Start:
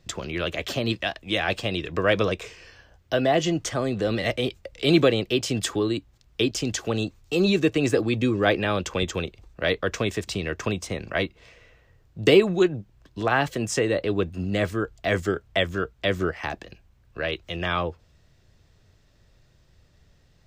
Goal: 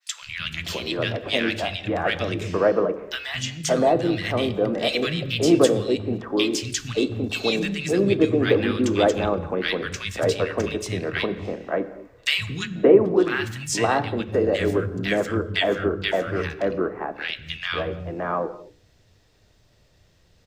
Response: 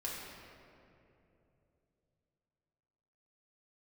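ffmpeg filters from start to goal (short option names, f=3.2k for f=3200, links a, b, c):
-filter_complex "[0:a]lowshelf=f=65:g=-8.5,bandreject=f=70.81:t=h:w=4,bandreject=f=141.62:t=h:w=4,bandreject=f=212.43:t=h:w=4,bandreject=f=283.24:t=h:w=4,bandreject=f=354.05:t=h:w=4,bandreject=f=424.86:t=h:w=4,bandreject=f=495.67:t=h:w=4,bandreject=f=566.48:t=h:w=4,asplit=3[a][b][c];[b]asetrate=37084,aresample=44100,atempo=1.18921,volume=-12dB[d];[c]asetrate=58866,aresample=44100,atempo=0.749154,volume=-18dB[e];[a][d][e]amix=inputs=3:normalize=0,acrossover=split=170|1400[f][g][h];[f]adelay=220[i];[g]adelay=570[j];[i][j][h]amix=inputs=3:normalize=0,asplit=2[k][l];[1:a]atrim=start_sample=2205,afade=t=out:st=0.3:d=0.01,atrim=end_sample=13671[m];[l][m]afir=irnorm=-1:irlink=0,volume=-10.5dB[n];[k][n]amix=inputs=2:normalize=0,adynamicequalizer=threshold=0.0178:dfrequency=1700:dqfactor=0.7:tfrequency=1700:tqfactor=0.7:attack=5:release=100:ratio=0.375:range=2.5:mode=cutabove:tftype=highshelf,volume=2dB"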